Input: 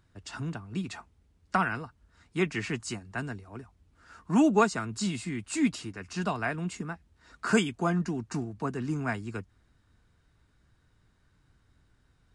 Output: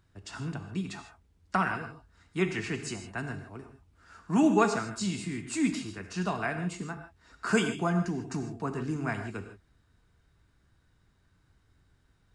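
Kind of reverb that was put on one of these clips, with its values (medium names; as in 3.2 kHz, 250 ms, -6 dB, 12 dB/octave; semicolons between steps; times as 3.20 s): gated-style reverb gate 180 ms flat, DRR 6.5 dB; trim -1.5 dB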